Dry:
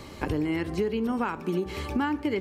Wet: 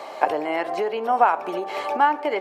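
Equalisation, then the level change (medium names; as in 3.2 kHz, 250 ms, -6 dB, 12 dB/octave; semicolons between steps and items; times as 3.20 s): resonant high-pass 690 Hz, resonance Q 4.9; treble shelf 3.6 kHz -10 dB; +7.5 dB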